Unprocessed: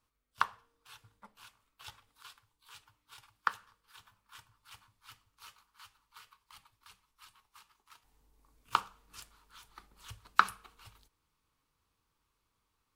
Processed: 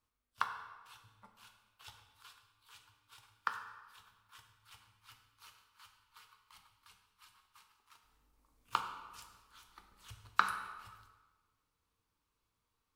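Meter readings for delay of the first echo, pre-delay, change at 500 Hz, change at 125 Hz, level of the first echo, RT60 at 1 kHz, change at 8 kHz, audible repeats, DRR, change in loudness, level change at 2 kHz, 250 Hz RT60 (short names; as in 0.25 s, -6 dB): none, 6 ms, -3.5 dB, -2.0 dB, none, 1.3 s, -4.0 dB, none, 5.0 dB, -6.0 dB, -3.5 dB, 1.3 s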